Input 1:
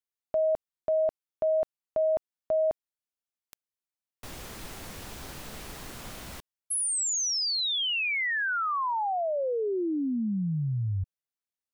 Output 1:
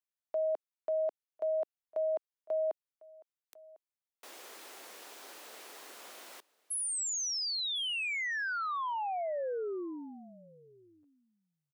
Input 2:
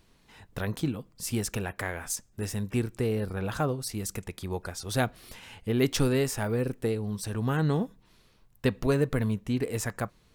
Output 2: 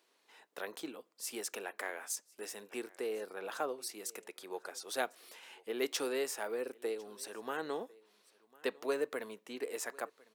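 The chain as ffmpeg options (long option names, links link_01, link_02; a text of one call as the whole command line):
ffmpeg -i in.wav -af "highpass=frequency=360:width=0.5412,highpass=frequency=360:width=1.3066,aecho=1:1:1051:0.0631,volume=-6dB" out.wav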